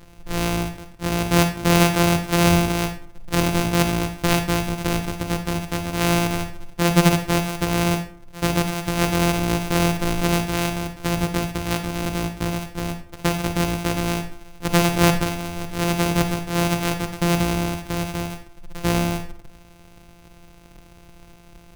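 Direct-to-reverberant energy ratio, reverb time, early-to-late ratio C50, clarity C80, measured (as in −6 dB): 8.0 dB, 0.45 s, 10.0 dB, 14.0 dB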